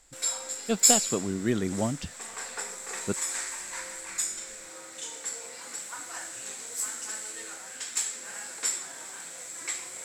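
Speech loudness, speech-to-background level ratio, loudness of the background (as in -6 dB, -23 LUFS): -31.0 LUFS, -0.5 dB, -30.5 LUFS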